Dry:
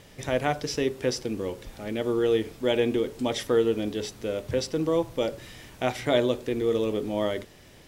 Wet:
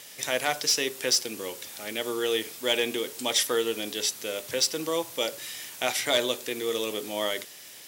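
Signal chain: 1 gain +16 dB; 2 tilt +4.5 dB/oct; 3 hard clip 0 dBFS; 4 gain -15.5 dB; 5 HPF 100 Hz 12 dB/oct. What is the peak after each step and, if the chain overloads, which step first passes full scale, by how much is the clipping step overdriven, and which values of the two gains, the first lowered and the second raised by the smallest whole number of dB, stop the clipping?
+7.0, +9.0, 0.0, -15.5, -13.5 dBFS; step 1, 9.0 dB; step 1 +7 dB, step 4 -6.5 dB

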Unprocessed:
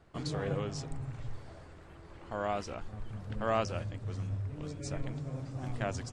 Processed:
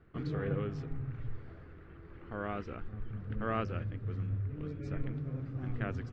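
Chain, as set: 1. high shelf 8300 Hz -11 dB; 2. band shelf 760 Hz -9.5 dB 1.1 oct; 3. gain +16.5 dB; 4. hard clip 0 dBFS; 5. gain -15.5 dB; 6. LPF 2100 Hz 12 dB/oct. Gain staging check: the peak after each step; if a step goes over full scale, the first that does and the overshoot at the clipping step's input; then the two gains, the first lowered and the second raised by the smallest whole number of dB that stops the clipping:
-17.5, -21.5, -5.0, -5.0, -20.5, -21.5 dBFS; no overload

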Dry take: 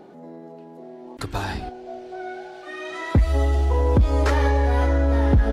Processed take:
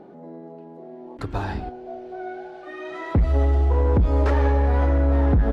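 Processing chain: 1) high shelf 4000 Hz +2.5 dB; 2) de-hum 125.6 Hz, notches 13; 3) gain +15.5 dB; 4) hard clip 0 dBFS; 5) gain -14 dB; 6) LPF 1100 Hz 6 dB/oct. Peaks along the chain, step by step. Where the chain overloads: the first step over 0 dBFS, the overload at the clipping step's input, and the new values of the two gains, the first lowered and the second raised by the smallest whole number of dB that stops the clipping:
-10.5, -9.5, +6.0, 0.0, -14.0, -14.0 dBFS; step 3, 6.0 dB; step 3 +9.5 dB, step 5 -8 dB

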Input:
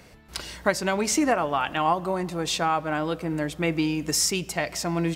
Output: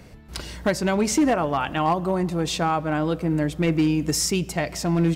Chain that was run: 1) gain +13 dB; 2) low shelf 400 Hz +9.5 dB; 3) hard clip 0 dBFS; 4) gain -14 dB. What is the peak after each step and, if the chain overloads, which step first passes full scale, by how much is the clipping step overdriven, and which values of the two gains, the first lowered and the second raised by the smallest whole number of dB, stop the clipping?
+6.0, +6.5, 0.0, -14.0 dBFS; step 1, 6.5 dB; step 1 +6 dB, step 4 -7 dB

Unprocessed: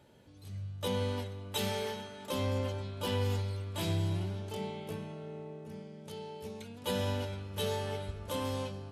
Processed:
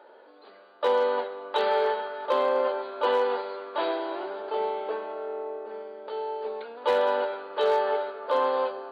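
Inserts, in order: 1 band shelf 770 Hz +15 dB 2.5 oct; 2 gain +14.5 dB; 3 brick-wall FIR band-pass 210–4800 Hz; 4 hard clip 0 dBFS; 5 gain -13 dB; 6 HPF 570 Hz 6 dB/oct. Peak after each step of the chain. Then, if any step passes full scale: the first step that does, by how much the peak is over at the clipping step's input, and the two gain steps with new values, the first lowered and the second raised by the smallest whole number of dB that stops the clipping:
-9.5, +5.0, +4.5, 0.0, -13.0, -12.5 dBFS; step 2, 4.5 dB; step 2 +9.5 dB, step 5 -8 dB

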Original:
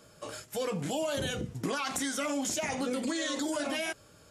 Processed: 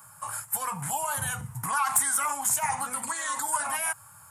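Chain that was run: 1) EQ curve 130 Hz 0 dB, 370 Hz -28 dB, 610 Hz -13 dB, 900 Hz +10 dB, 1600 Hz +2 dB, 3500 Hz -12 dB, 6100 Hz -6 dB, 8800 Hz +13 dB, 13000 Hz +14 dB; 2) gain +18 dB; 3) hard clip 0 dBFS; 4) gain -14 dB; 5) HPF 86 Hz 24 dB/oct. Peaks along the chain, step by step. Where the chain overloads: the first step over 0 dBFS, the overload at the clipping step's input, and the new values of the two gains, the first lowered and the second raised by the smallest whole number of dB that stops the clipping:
-8.5, +9.5, 0.0, -14.0, -13.5 dBFS; step 2, 9.5 dB; step 2 +8 dB, step 4 -4 dB

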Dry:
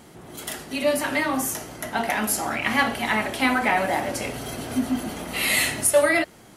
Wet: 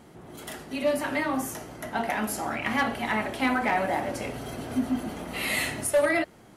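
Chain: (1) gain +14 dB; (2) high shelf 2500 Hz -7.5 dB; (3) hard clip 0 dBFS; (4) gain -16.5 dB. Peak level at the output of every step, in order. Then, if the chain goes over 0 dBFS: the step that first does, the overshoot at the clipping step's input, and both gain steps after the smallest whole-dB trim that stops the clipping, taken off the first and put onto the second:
+7.0, +6.0, 0.0, -16.5 dBFS; step 1, 6.0 dB; step 1 +8 dB, step 4 -10.5 dB

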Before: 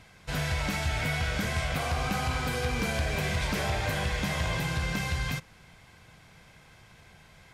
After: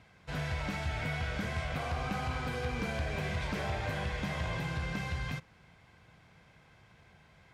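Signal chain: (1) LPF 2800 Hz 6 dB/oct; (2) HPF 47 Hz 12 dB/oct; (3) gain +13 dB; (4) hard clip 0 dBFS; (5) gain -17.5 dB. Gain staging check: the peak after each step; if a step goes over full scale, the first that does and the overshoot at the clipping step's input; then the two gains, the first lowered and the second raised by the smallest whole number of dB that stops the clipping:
-21.0, -18.5, -5.5, -5.5, -23.0 dBFS; no overload

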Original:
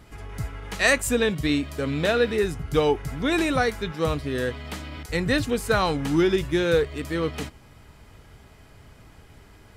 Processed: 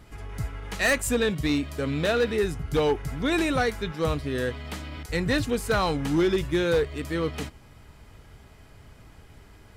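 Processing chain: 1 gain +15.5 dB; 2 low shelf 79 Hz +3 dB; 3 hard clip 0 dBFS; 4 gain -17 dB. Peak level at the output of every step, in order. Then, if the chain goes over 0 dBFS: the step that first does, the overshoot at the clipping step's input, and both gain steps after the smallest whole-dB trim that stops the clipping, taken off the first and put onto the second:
+8.5, +8.5, 0.0, -17.0 dBFS; step 1, 8.5 dB; step 1 +6.5 dB, step 4 -8 dB

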